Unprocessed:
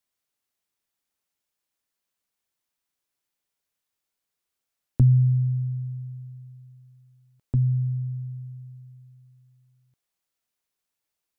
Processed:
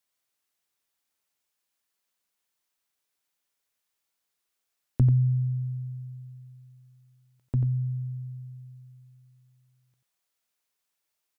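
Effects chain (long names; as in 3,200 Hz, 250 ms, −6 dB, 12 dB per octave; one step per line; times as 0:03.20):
low-shelf EQ 380 Hz −6 dB
single-tap delay 89 ms −7.5 dB
level +2 dB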